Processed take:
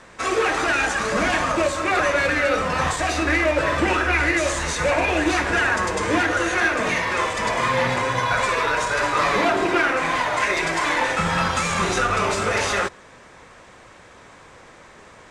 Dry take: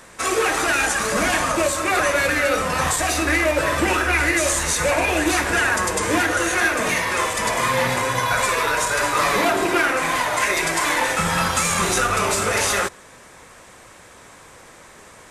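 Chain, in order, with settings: distance through air 91 m

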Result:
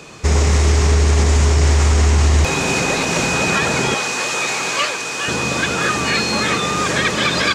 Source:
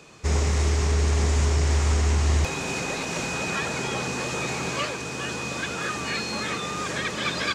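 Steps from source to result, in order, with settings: 3.94–5.28 s: high-pass 870 Hz 6 dB/octave; loudness maximiser +16 dB; trim -5 dB

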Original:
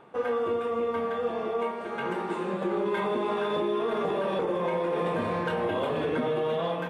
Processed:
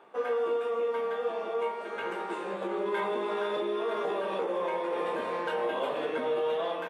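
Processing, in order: high-pass 350 Hz 12 dB/octave; doubling 15 ms -6 dB; trim -2.5 dB

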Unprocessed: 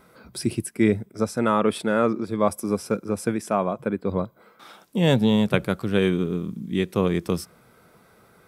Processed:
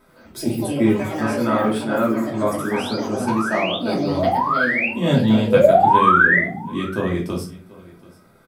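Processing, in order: painted sound rise, 5.47–6.40 s, 450–2100 Hz -14 dBFS; on a send: delay 733 ms -21.5 dB; on the sum: ever faster or slower copies 87 ms, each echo +5 st, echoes 3, each echo -6 dB; simulated room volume 210 m³, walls furnished, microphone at 2.8 m; trim -5.5 dB

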